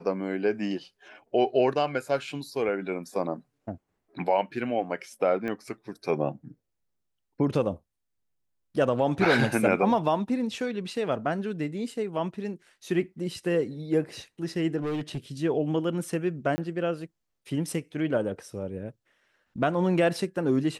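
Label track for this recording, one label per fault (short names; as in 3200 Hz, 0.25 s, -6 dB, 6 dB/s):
5.480000	5.480000	pop -22 dBFS
9.250000	9.250000	gap 3.7 ms
14.770000	15.180000	clipped -27 dBFS
16.560000	16.580000	gap 20 ms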